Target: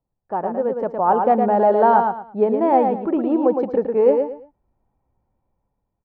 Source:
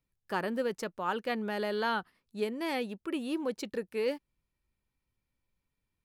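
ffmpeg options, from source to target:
-af "dynaudnorm=f=240:g=7:m=9.5dB,lowpass=f=780:t=q:w=3.4,aecho=1:1:112|224|336:0.562|0.146|0.038,volume=2.5dB"

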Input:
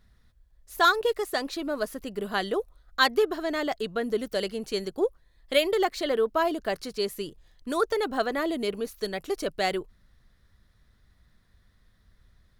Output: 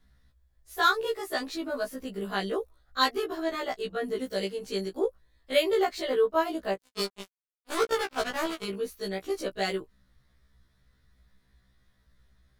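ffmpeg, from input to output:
-filter_complex "[0:a]asplit=3[a][b][c];[a]afade=t=out:st=6.74:d=0.02[d];[b]acrusher=bits=3:mix=0:aa=0.5,afade=t=in:st=6.74:d=0.02,afade=t=out:st=8.63:d=0.02[e];[c]afade=t=in:st=8.63:d=0.02[f];[d][e][f]amix=inputs=3:normalize=0,afftfilt=real='re*1.73*eq(mod(b,3),0)':imag='im*1.73*eq(mod(b,3),0)':win_size=2048:overlap=0.75"

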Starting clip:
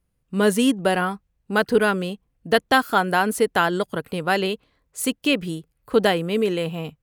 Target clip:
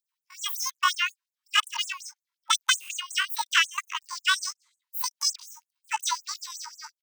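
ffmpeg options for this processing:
-af "asetrate=85689,aresample=44100,atempo=0.514651,afftfilt=real='re*gte(b*sr/1024,860*pow(6700/860,0.5+0.5*sin(2*PI*5.5*pts/sr)))':imag='im*gte(b*sr/1024,860*pow(6700/860,0.5+0.5*sin(2*PI*5.5*pts/sr)))':win_size=1024:overlap=0.75"

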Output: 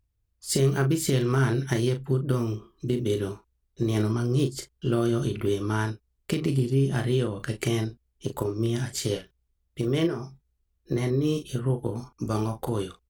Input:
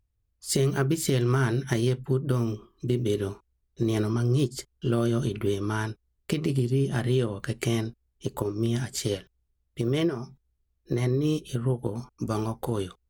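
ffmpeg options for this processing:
-filter_complex "[0:a]asplit=2[a][b];[b]adelay=37,volume=-8dB[c];[a][c]amix=inputs=2:normalize=0"

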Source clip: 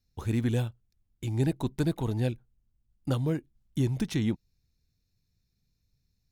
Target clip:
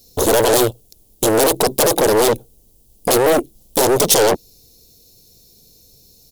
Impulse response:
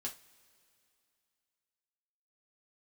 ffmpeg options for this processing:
-af "aeval=exprs='0.2*sin(PI/2*8.91*val(0)/0.2)':c=same,firequalizer=gain_entry='entry(100,0);entry(460,13);entry(1500,-16);entry(3100,2);entry(11000,11)':delay=0.05:min_phase=1,aeval=exprs='(tanh(4.47*val(0)+0.55)-tanh(0.55))/4.47':c=same,bass=f=250:g=-8,treble=f=4k:g=5,volume=3.5dB"

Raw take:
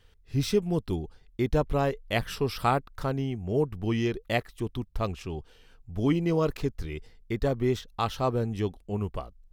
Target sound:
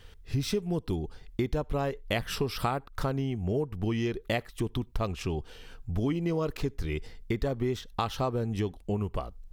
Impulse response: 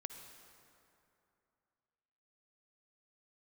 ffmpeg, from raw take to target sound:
-filter_complex "[0:a]acompressor=threshold=-36dB:ratio=5,asplit=2[a][b];[1:a]atrim=start_sample=2205,atrim=end_sample=4410[c];[b][c]afir=irnorm=-1:irlink=0,volume=-12.5dB[d];[a][d]amix=inputs=2:normalize=0,volume=7.5dB"

